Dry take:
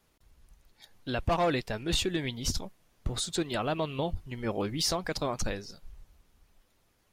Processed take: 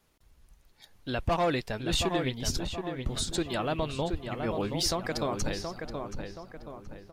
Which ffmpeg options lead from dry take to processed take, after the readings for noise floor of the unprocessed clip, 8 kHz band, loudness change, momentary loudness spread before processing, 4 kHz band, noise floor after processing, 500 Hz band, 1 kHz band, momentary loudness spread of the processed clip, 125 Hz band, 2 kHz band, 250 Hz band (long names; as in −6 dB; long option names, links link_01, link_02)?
−70 dBFS, 0.0 dB, +0.5 dB, 10 LU, +0.5 dB, −63 dBFS, +1.0 dB, +1.0 dB, 15 LU, +1.5 dB, +1.0 dB, +1.0 dB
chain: -filter_complex "[0:a]asplit=2[link_01][link_02];[link_02]adelay=725,lowpass=frequency=2400:poles=1,volume=-5.5dB,asplit=2[link_03][link_04];[link_04]adelay=725,lowpass=frequency=2400:poles=1,volume=0.46,asplit=2[link_05][link_06];[link_06]adelay=725,lowpass=frequency=2400:poles=1,volume=0.46,asplit=2[link_07][link_08];[link_08]adelay=725,lowpass=frequency=2400:poles=1,volume=0.46,asplit=2[link_09][link_10];[link_10]adelay=725,lowpass=frequency=2400:poles=1,volume=0.46,asplit=2[link_11][link_12];[link_12]adelay=725,lowpass=frequency=2400:poles=1,volume=0.46[link_13];[link_01][link_03][link_05][link_07][link_09][link_11][link_13]amix=inputs=7:normalize=0"